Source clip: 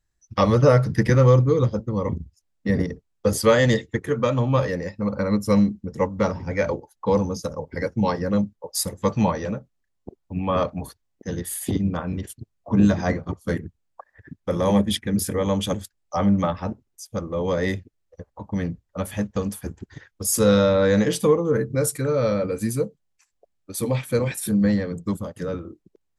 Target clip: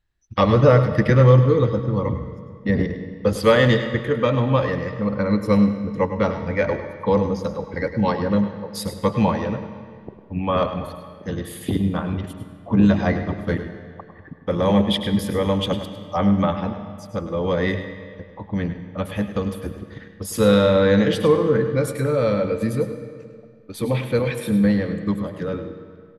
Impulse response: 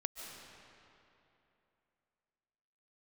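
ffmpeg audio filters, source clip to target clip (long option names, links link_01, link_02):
-filter_complex "[0:a]highshelf=frequency=4800:width_type=q:width=1.5:gain=-9.5,aecho=1:1:103:0.266,asplit=2[link_01][link_02];[1:a]atrim=start_sample=2205,asetrate=66150,aresample=44100[link_03];[link_02][link_03]afir=irnorm=-1:irlink=0,volume=1dB[link_04];[link_01][link_04]amix=inputs=2:normalize=0,volume=-2.5dB"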